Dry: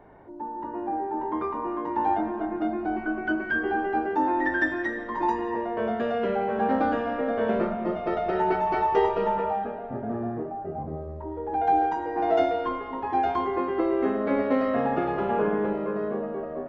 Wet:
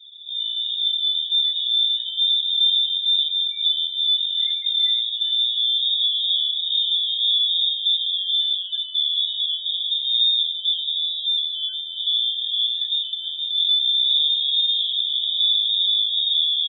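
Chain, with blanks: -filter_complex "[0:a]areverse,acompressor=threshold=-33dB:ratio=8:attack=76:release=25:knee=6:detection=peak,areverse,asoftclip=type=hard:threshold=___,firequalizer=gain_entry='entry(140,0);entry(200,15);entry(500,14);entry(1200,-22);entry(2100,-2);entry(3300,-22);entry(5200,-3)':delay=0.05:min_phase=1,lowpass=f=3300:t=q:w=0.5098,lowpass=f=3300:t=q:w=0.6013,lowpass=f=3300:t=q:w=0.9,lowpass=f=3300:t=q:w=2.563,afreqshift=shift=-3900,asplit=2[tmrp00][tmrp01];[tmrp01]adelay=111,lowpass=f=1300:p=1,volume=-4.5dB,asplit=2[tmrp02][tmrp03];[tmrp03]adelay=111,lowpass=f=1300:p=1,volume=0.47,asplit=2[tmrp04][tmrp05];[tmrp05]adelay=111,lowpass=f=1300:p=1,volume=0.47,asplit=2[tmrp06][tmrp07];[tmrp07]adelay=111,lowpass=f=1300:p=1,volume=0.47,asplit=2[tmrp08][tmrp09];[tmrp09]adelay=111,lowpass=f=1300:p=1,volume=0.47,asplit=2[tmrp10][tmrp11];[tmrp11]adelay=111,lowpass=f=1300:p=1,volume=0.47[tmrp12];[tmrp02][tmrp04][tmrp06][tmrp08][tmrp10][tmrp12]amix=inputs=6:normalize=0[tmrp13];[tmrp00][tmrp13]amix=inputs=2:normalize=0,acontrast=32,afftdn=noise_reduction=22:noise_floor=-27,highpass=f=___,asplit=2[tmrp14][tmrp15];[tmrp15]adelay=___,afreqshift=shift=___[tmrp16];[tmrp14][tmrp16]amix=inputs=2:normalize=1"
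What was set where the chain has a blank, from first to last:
-34dB, 670, 5.5, -2.3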